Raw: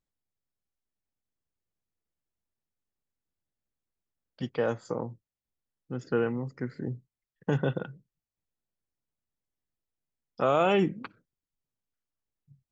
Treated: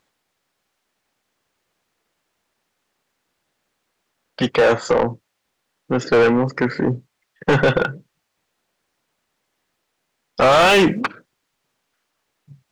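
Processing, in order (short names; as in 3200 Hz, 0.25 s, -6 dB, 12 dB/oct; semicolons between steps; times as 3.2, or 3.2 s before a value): 10.52–11.01 high shelf 2200 Hz +9 dB; overdrive pedal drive 28 dB, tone 2800 Hz, clips at -11 dBFS; gain +5.5 dB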